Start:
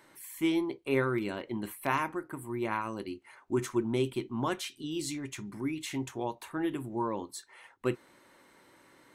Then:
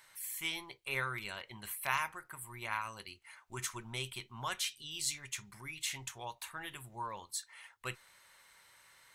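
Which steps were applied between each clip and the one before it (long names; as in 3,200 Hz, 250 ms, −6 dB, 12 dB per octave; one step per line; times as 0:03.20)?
guitar amp tone stack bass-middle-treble 10-0-10
level +4.5 dB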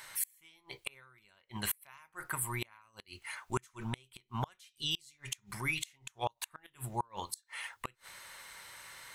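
gate with flip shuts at −32 dBFS, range −34 dB
level +11.5 dB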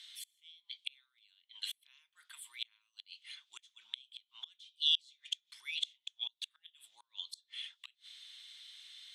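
four-pole ladder band-pass 3,600 Hz, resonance 80%
level +6.5 dB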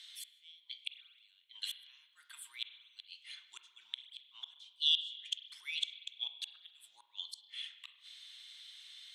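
spring reverb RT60 1.2 s, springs 33/47 ms, chirp 20 ms, DRR 9 dB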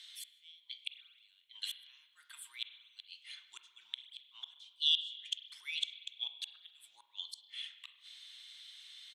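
slap from a distant wall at 200 metres, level −29 dB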